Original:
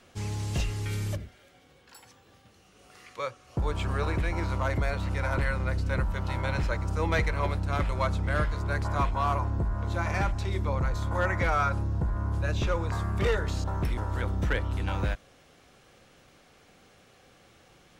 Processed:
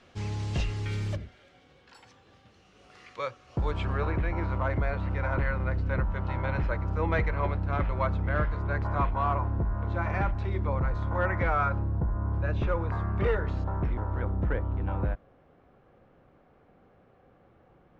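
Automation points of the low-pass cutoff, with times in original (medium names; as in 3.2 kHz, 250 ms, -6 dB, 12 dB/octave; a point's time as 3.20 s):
3.61 s 4.8 kHz
4.11 s 2.1 kHz
11.64 s 2.1 kHz
12.18 s 1.2 kHz
12.46 s 1.9 kHz
13.43 s 1.9 kHz
14.60 s 1.1 kHz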